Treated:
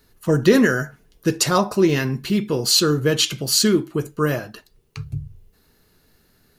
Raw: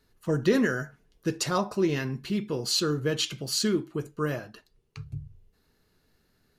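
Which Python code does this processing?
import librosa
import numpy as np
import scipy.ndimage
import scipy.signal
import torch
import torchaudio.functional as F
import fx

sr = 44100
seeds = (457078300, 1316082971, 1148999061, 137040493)

y = fx.high_shelf(x, sr, hz=11000.0, db=10.5)
y = y * librosa.db_to_amplitude(8.5)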